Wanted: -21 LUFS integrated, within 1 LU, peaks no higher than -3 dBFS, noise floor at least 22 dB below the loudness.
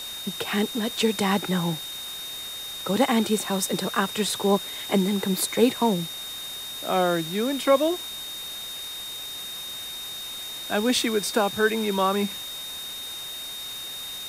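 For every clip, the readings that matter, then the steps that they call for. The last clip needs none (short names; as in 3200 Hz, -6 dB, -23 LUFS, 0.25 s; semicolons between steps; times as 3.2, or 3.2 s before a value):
steady tone 3700 Hz; tone level -34 dBFS; noise floor -36 dBFS; noise floor target -48 dBFS; loudness -26.0 LUFS; peak -7.5 dBFS; loudness target -21.0 LUFS
-> notch 3700 Hz, Q 30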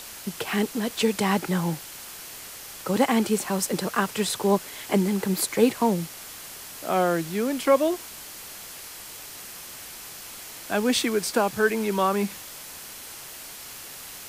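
steady tone none; noise floor -41 dBFS; noise floor target -47 dBFS
-> denoiser 6 dB, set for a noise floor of -41 dBFS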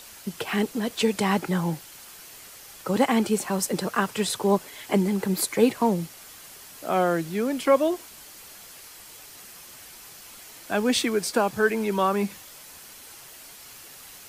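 noise floor -46 dBFS; noise floor target -47 dBFS
-> denoiser 6 dB, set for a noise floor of -46 dBFS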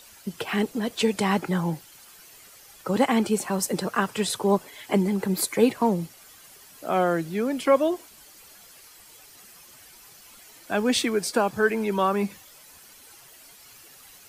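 noise floor -51 dBFS; loudness -25.0 LUFS; peak -8.0 dBFS; loudness target -21.0 LUFS
-> gain +4 dB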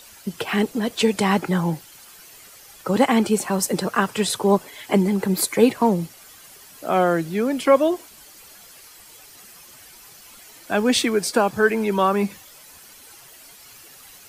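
loudness -21.0 LUFS; peak -4.0 dBFS; noise floor -47 dBFS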